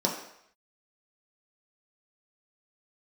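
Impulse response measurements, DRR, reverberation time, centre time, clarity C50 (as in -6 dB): -2.0 dB, 0.70 s, 33 ms, 5.5 dB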